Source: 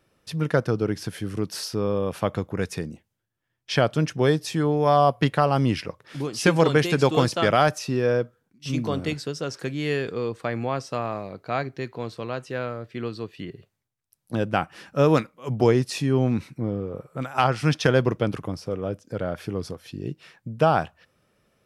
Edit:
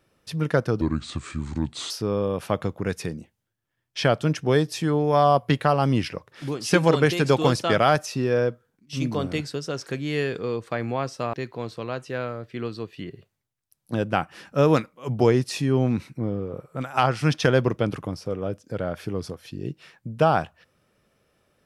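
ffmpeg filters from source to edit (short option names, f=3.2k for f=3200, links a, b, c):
-filter_complex "[0:a]asplit=4[a][b][c][d];[a]atrim=end=0.814[e];[b]atrim=start=0.81:end=1.63,asetpts=PTS-STARTPTS,asetrate=33075,aresample=44100[f];[c]atrim=start=1.626:end=11.062[g];[d]atrim=start=11.738[h];[e][f]acrossfade=d=0.004:c1=hsin:c2=hsin[i];[i][g]acrossfade=d=0.004:c1=hsin:c2=hsin[j];[j][h]acrossfade=d=0.004:c1=hsin:c2=hsin"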